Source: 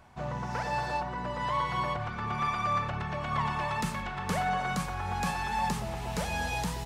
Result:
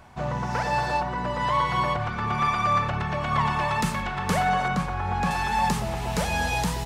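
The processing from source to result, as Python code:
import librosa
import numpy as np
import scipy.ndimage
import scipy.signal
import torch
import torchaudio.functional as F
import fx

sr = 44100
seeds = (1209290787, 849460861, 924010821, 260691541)

y = fx.lowpass(x, sr, hz=2200.0, slope=6, at=(4.68, 5.31))
y = y * librosa.db_to_amplitude(6.5)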